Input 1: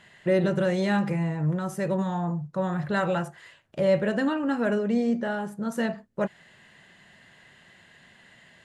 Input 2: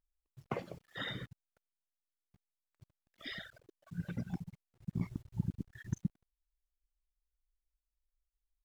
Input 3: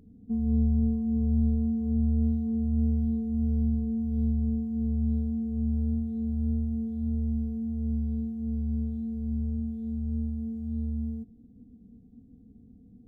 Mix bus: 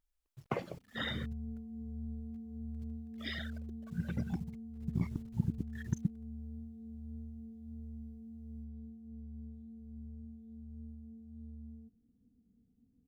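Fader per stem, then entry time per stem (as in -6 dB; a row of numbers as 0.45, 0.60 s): off, +2.5 dB, -17.5 dB; off, 0.00 s, 0.65 s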